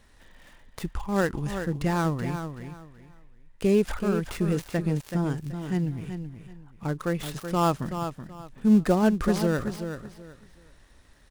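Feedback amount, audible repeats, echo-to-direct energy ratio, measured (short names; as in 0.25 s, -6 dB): 24%, 3, -8.0 dB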